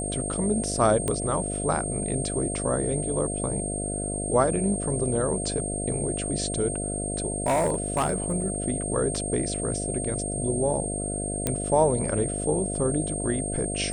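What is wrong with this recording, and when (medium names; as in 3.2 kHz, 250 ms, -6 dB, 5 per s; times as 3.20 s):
buzz 50 Hz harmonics 14 -32 dBFS
whine 8.6 kHz -31 dBFS
1.08 s: pop -13 dBFS
7.36–8.56 s: clipped -19 dBFS
11.47 s: pop -9 dBFS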